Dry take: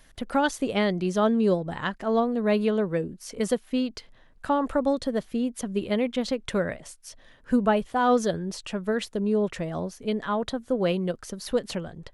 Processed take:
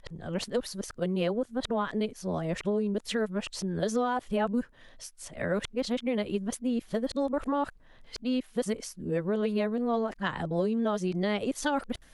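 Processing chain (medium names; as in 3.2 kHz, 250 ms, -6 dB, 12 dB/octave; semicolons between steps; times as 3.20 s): reverse the whole clip; compression, threshold -25 dBFS, peak gain reduction 8.5 dB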